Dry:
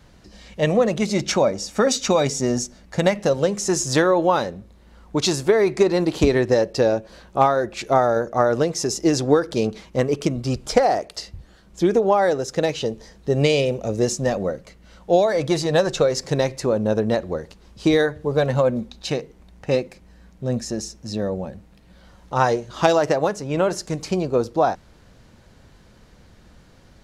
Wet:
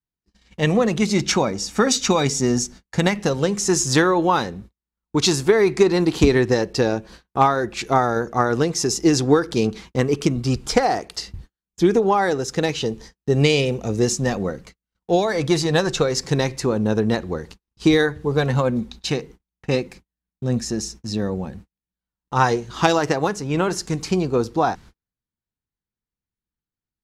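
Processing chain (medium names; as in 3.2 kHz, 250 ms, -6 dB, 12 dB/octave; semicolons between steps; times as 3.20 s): gate -41 dBFS, range -45 dB; peaking EQ 590 Hz -12 dB 0.4 oct; trim +3 dB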